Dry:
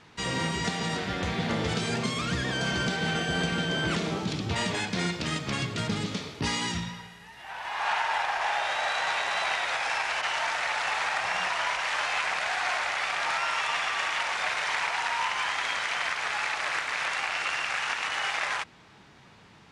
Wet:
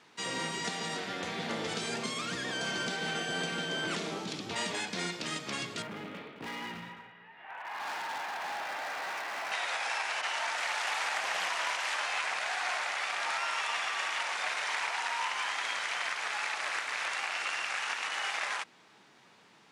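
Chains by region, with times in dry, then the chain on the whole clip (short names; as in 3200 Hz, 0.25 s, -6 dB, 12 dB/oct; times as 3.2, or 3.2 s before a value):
5.82–9.52 LPF 2600 Hz 24 dB/oct + hard clip -30.5 dBFS + echo 0.214 s -11.5 dB
10.57–11.95 high shelf 4500 Hz +4 dB + Doppler distortion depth 0.32 ms
whole clip: HPF 240 Hz 12 dB/oct; high shelf 7200 Hz +6.5 dB; gain -5 dB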